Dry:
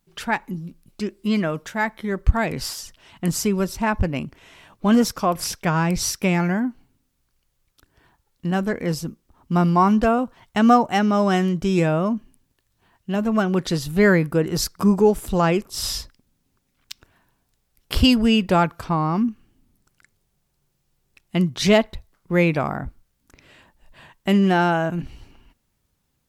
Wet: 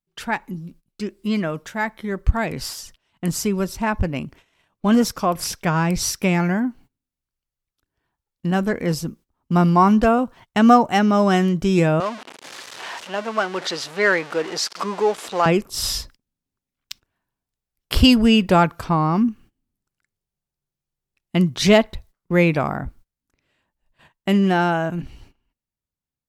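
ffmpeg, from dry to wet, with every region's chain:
-filter_complex "[0:a]asettb=1/sr,asplit=3[a][b][c];[a]atrim=end=12.004[d];[b]atrim=start=12:end=15.46,asetpts=PTS-STARTPTS,afade=t=in:d=0.004:c=qsin,afade=t=out:st=3.456:d=0.004:c=qsin,aeval=exprs='val(0)+0.5*0.0473*sgn(val(0))':c=same,highpass=570,lowpass=5.6k[e];[c]atrim=start=15.456[f];[d][e]acrossfade=d=0.004:c1=hsin:c2=qsin[g];[g][f]acrossfade=d=0.004:c1=qsin:c2=hsin,agate=range=-19dB:threshold=-45dB:ratio=16:detection=peak,dynaudnorm=f=820:g=11:m=11.5dB,volume=-1dB"

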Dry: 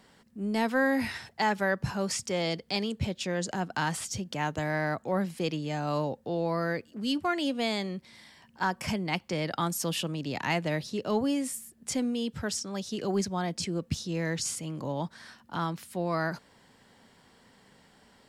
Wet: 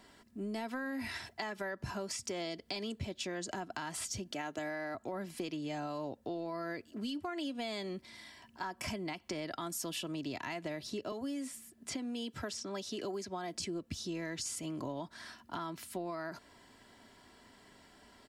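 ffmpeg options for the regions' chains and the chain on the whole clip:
-filter_complex "[0:a]asettb=1/sr,asplit=3[a][b][c];[a]atrim=end=4.314[d];[b]atrim=start=4.31:end=4.95,asetpts=PTS-STARTPTS,afade=t=in:d=0.004:c=qsin,afade=t=out:st=0.636:d=0.004:c=qsin,highpass=200,bandreject=f=1k:w=6.8[e];[c]atrim=start=4.946[f];[d][e]acrossfade=d=0.004:c1=hsin:c2=qsin[g];[g][f]acrossfade=d=0.004:c1=qsin:c2=hsin,asettb=1/sr,asplit=3[h][i][j];[h]atrim=end=11.124[k];[i]atrim=start=11.12:end=13.54,asetpts=PTS-STARTPTS,afade=t=in:d=0.004:c=qsin,afade=t=out:st=2.416:d=0.004:c=qsin,highpass=84,acrossover=split=280|4900[l][m][n];[l]acompressor=threshold=-41dB:ratio=4[o];[m]acompressor=threshold=-33dB:ratio=4[p];[n]acompressor=threshold=-48dB:ratio=4[q];[o][p][q]amix=inputs=3:normalize=0[r];[j]atrim=start=13.536[s];[k][r]acrossfade=d=0.004:c1=hsin:c2=qsin[t];[t][s]acrossfade=d=0.004:c1=qsin:c2=hsin,aecho=1:1:3:0.52,alimiter=limit=-22.5dB:level=0:latency=1:release=130,acompressor=threshold=-35dB:ratio=6,volume=-1dB"

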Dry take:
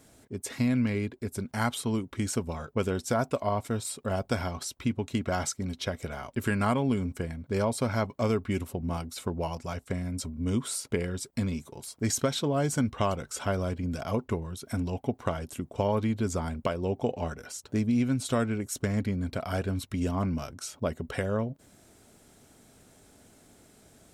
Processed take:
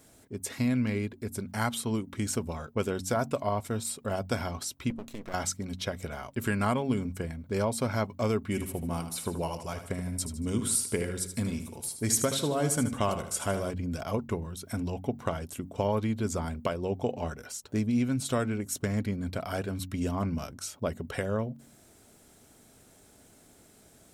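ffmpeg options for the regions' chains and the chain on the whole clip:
-filter_complex "[0:a]asettb=1/sr,asplit=3[a][b][c];[a]atrim=end=4.904[d];[b]atrim=start=4.9:end=5.34,asetpts=PTS-STARTPTS,afade=t=in:d=0.004:c=qsin,afade=t=out:st=0.436:d=0.004:c=qsin,equalizer=f=95:t=o:w=0.49:g=-14.5,acompressor=threshold=-30dB:ratio=6:attack=3.2:release=140:knee=1:detection=peak,aeval=exprs='max(val(0),0)':c=same[e];[c]atrim=start=5.336[f];[d][e]acrossfade=d=0.004:c1=hsin:c2=qsin[g];[g][f]acrossfade=d=0.004:c1=qsin:c2=hsin,asettb=1/sr,asplit=3[h][i][j];[h]atrim=end=8.474[k];[i]atrim=start=8.47:end=13.71,asetpts=PTS-STARTPTS,afade=t=in:d=0.004:c=qsin,afade=t=out:st=5.236:d=0.004:c=qsin,equalizer=f=10k:w=2:g=8.5,aecho=1:1:77|154|231|308|385:0.335|0.141|0.0591|0.0248|0.0104,atrim=end_sample=231084[l];[j]atrim=start=13.706[m];[k][l]acrossfade=d=0.004:c1=hsin:c2=qsin[n];[n][m]acrossfade=d=0.004:c1=qsin:c2=hsin,highshelf=f=11k:g=7,bandreject=f=46.13:t=h:w=4,bandreject=f=92.26:t=h:w=4,bandreject=f=138.39:t=h:w=4,bandreject=f=184.52:t=h:w=4,bandreject=f=230.65:t=h:w=4,bandreject=f=276.78:t=h:w=4,volume=-1dB"

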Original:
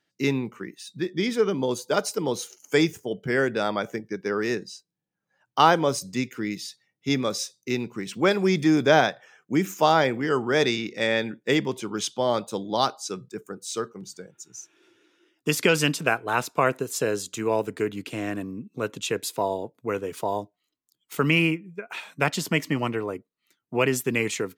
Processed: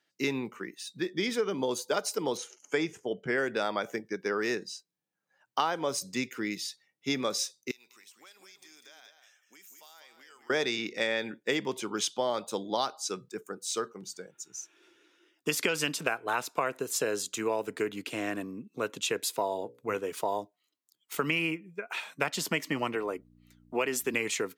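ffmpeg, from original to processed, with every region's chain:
-filter_complex "[0:a]asettb=1/sr,asplit=3[a][b][c];[a]atrim=end=2.374[d];[b]atrim=start=2.37:end=3.38,asetpts=PTS-STARTPTS,afade=t=in:d=0.004:c=qsin,afade=t=out:st=1.006:d=0.004:c=qsin,lowpass=6.3k,equalizer=f=4.3k:t=o:w=0.73:g=-6.5[e];[c]atrim=start=3.376[f];[d][e]acrossfade=d=0.004:c1=hsin:c2=qsin[g];[g][f]acrossfade=d=0.004:c1=qsin:c2=hsin,asettb=1/sr,asplit=3[h][i][j];[h]atrim=end=7.714[k];[i]atrim=start=7.71:end=10.5,asetpts=PTS-STARTPTS,afade=t=in:d=0.004:c=qsin,afade=t=out:st=2.786:d=0.004:c=qsin,aderivative,acompressor=threshold=-52dB:ratio=5:attack=3.2:release=140:knee=1:detection=peak,aecho=1:1:197:0.398,atrim=end_sample=123039[l];[j]atrim=start=10.496[m];[k][l]acrossfade=d=0.004:c1=hsin:c2=qsin[n];[n][m]acrossfade=d=0.004:c1=qsin:c2=hsin,asettb=1/sr,asplit=3[o][p][q];[o]atrim=end=19.504[r];[p]atrim=start=19.5:end=19.96,asetpts=PTS-STARTPTS,afade=t=in:d=0.004:c=qsin,afade=t=out:st=0.456:d=0.004:c=qsin,bandreject=f=60:t=h:w=6,bandreject=f=120:t=h:w=6,bandreject=f=180:t=h:w=6,bandreject=f=240:t=h:w=6,bandreject=f=300:t=h:w=6,bandreject=f=360:t=h:w=6,bandreject=f=420:t=h:w=6,bandreject=f=480:t=h:w=6,bandreject=f=540:t=h:w=6,asubboost=boost=10.5:cutoff=180[s];[q]atrim=start=19.956[t];[r][s]acrossfade=d=0.004:c1=hsin:c2=qsin[u];[u][t]acrossfade=d=0.004:c1=qsin:c2=hsin,asettb=1/sr,asplit=3[v][w][x];[v]atrim=end=22.954[y];[w]atrim=start=22.95:end=24.14,asetpts=PTS-STARTPTS,afade=t=in:d=0.004:c=qsin,afade=t=out:st=1.186:d=0.004:c=qsin,highpass=180,aeval=exprs='val(0)+0.00398*(sin(2*PI*60*n/s)+sin(2*PI*2*60*n/s)/2+sin(2*PI*3*60*n/s)/3+sin(2*PI*4*60*n/s)/4+sin(2*PI*5*60*n/s)/5)':c=same[z];[x]atrim=start=24.136[aa];[y][z]acrossfade=d=0.004:c1=hsin:c2=qsin[ab];[ab][aa]acrossfade=d=0.004:c1=qsin:c2=hsin,highpass=f=380:p=1,acompressor=threshold=-25dB:ratio=6"

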